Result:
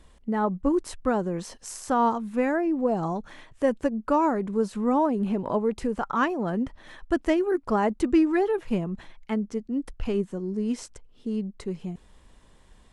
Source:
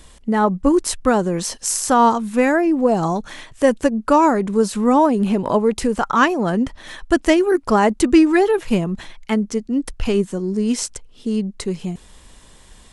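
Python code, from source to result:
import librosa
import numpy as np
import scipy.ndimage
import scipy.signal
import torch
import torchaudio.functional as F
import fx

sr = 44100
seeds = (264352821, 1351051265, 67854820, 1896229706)

y = fx.high_shelf(x, sr, hz=3100.0, db=-11.0)
y = F.gain(torch.from_numpy(y), -8.0).numpy()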